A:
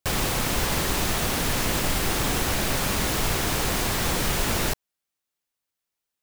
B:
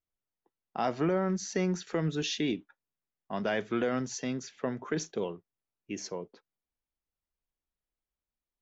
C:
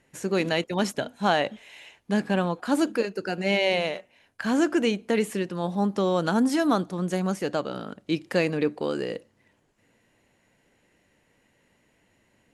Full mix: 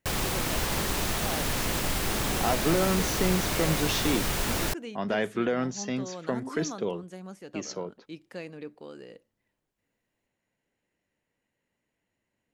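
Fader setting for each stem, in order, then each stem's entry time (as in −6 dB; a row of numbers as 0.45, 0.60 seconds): −4.0, +2.5, −16.0 decibels; 0.00, 1.65, 0.00 seconds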